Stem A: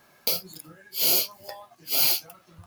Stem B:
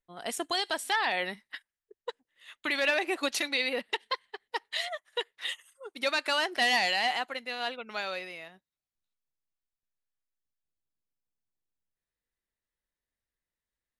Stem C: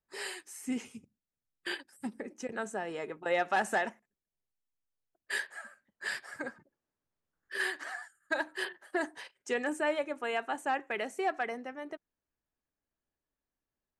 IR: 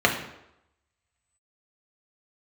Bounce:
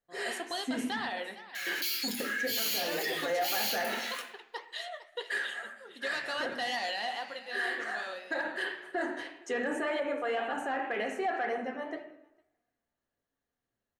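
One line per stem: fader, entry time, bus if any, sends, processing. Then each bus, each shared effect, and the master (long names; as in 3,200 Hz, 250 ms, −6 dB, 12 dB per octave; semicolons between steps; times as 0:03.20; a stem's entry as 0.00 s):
−2.5 dB, 1.55 s, send −3.5 dB, no echo send, Butterworth high-pass 1,700 Hz 36 dB per octave; brickwall limiter −12.5 dBFS, peak gain reduction 6 dB; envelope flattener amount 50%
−5.0 dB, 0.00 s, send −20 dB, echo send −13.5 dB, no processing
−2.0 dB, 0.00 s, send −8.5 dB, echo send −21.5 dB, no processing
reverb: on, RT60 0.85 s, pre-delay 3 ms
echo: single-tap delay 457 ms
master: flanger 1.9 Hz, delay 5.1 ms, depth 9.7 ms, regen −67%; soft clipping −16 dBFS, distortion −18 dB; brickwall limiter −24.5 dBFS, peak gain reduction 8.5 dB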